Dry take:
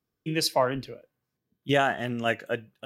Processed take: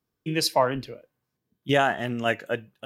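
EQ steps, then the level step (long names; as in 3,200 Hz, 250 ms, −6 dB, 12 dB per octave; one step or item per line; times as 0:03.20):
parametric band 930 Hz +3 dB 0.31 octaves
+1.5 dB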